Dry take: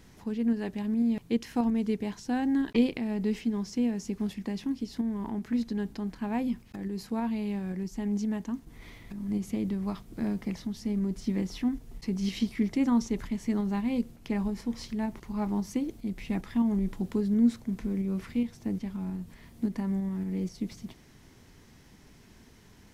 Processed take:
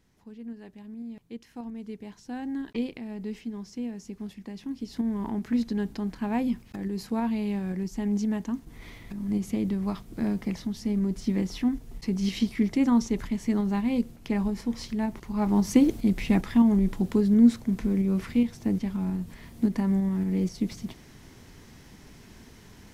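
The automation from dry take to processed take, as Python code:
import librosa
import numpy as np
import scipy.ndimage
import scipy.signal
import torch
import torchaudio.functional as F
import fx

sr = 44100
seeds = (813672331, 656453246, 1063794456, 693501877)

y = fx.gain(x, sr, db=fx.line((1.49, -12.5), (2.45, -6.0), (4.54, -6.0), (5.08, 3.0), (15.33, 3.0), (15.83, 12.0), (16.76, 5.5)))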